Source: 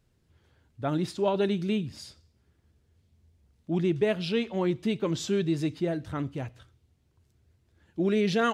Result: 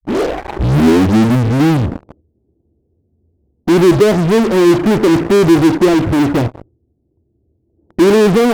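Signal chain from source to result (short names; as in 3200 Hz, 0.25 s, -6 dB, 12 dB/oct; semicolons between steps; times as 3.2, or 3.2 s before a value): tape start at the beginning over 2.20 s; steep low-pass 770 Hz 36 dB/oct; bell 330 Hz +13 dB 1.1 oct; in parallel at -3 dB: fuzz box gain 44 dB, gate -48 dBFS; on the sum: vibrato 0.38 Hz 47 cents; gain +2.5 dB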